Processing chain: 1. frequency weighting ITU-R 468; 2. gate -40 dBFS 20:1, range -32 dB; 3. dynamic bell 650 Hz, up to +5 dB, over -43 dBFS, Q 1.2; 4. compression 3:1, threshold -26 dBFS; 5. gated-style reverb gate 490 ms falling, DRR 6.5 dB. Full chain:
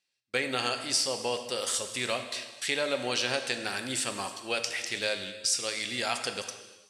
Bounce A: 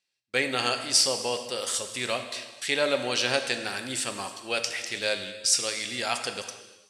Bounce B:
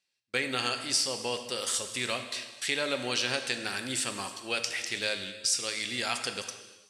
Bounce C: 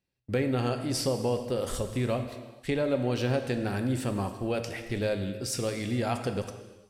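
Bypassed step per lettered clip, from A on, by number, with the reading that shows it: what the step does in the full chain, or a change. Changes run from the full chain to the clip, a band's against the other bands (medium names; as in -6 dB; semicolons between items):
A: 4, mean gain reduction 1.5 dB; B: 3, 500 Hz band -3.0 dB; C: 1, 125 Hz band +20.0 dB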